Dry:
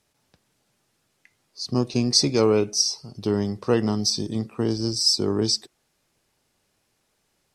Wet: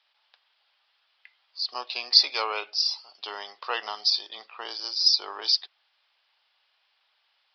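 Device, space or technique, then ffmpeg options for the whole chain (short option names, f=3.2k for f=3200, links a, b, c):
musical greeting card: -af "aresample=11025,aresample=44100,highpass=f=790:w=0.5412,highpass=f=790:w=1.3066,equalizer=f=3.2k:t=o:w=0.54:g=7,volume=2.5dB"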